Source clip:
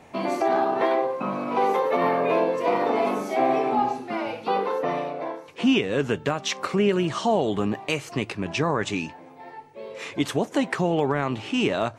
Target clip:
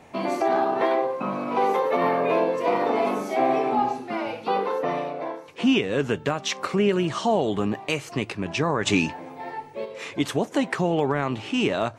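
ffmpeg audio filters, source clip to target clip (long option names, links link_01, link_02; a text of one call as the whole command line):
ffmpeg -i in.wav -filter_complex "[0:a]asplit=3[link_01][link_02][link_03];[link_01]afade=type=out:start_time=8.85:duration=0.02[link_04];[link_02]acontrast=88,afade=type=in:start_time=8.85:duration=0.02,afade=type=out:start_time=9.84:duration=0.02[link_05];[link_03]afade=type=in:start_time=9.84:duration=0.02[link_06];[link_04][link_05][link_06]amix=inputs=3:normalize=0" out.wav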